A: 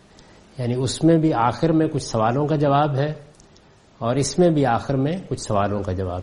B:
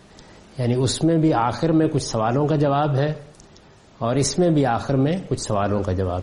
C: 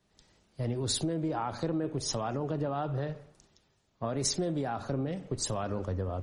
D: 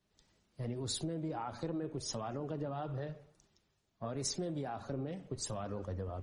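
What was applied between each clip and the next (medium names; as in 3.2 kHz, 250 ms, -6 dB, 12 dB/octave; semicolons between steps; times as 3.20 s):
loudness maximiser +11 dB; trim -8.5 dB
compression 6:1, threshold -22 dBFS, peak gain reduction 8.5 dB; three bands expanded up and down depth 70%; trim -6.5 dB
coarse spectral quantiser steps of 15 dB; trim -6.5 dB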